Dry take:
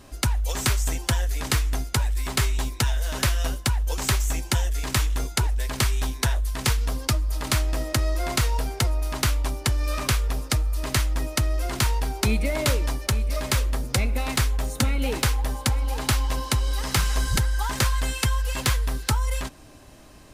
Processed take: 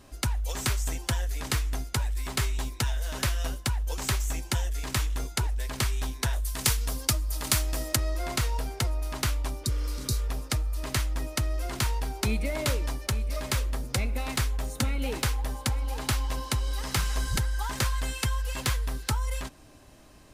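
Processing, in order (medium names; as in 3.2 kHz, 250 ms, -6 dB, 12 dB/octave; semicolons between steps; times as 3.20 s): 6.33–7.96 s: treble shelf 4.8 kHz +10.5 dB; 9.67–10.16 s: spectral replace 390–3700 Hz after; trim -5 dB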